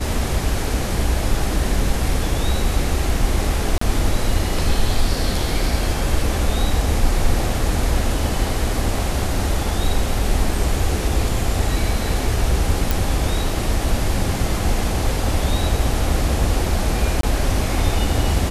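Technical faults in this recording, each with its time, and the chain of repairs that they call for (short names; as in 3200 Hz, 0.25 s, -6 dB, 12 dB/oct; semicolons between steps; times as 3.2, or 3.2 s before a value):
3.78–3.81 gap 34 ms
12.91 pop
17.21–17.23 gap 23 ms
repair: de-click; interpolate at 3.78, 34 ms; interpolate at 17.21, 23 ms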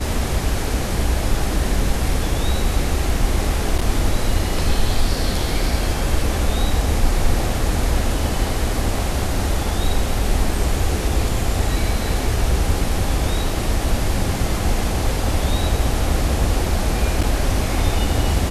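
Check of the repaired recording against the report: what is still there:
none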